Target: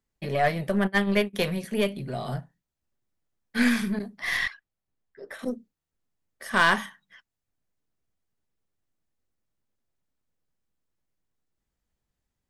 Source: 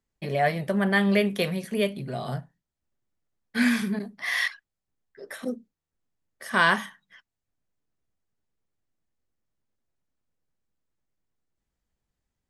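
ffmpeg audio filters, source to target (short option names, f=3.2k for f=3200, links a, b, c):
-filter_complex "[0:a]asplit=3[a][b][c];[a]afade=t=out:st=0.86:d=0.02[d];[b]agate=range=-26dB:threshold=-21dB:ratio=16:detection=peak,afade=t=in:st=0.86:d=0.02,afade=t=out:st=1.33:d=0.02[e];[c]afade=t=in:st=1.33:d=0.02[f];[d][e][f]amix=inputs=3:normalize=0,asettb=1/sr,asplit=3[g][h][i];[g]atrim=end=4.374[j];[h]atrim=start=4.37:end=5.39,asetpts=PTS-STARTPTS,afade=t=in:d=0.004:c=qsin,afade=t=out:st=1.016:d=0.004:c=qsin,highshelf=f=4.5k:g=-10[k];[i]atrim=start=5.386[l];[j][k]acrossfade=d=0.004:c1=hsin:c2=qsin[m];[m][l]acrossfade=d=0.004:c1=qsin:c2=hsin,aeval=exprs='0.473*(cos(1*acos(clip(val(0)/0.473,-1,1)))-cos(1*PI/2))+0.0211*(cos(8*acos(clip(val(0)/0.473,-1,1)))-cos(8*PI/2))':c=same"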